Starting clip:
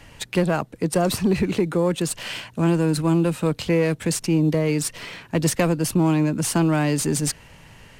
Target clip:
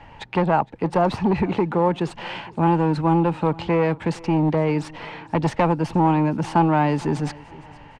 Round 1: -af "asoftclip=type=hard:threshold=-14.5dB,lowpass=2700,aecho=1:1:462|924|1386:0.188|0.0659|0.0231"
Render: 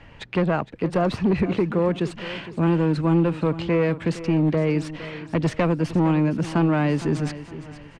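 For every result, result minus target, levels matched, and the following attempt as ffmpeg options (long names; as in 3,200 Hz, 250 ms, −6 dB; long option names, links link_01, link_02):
1,000 Hz band −7.5 dB; echo-to-direct +7.5 dB
-af "asoftclip=type=hard:threshold=-14.5dB,lowpass=2700,equalizer=frequency=860:width=3.6:gain=14,aecho=1:1:462|924|1386:0.188|0.0659|0.0231"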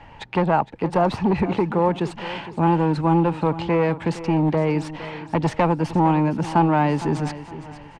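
echo-to-direct +7.5 dB
-af "asoftclip=type=hard:threshold=-14.5dB,lowpass=2700,equalizer=frequency=860:width=3.6:gain=14,aecho=1:1:462|924:0.0794|0.0278"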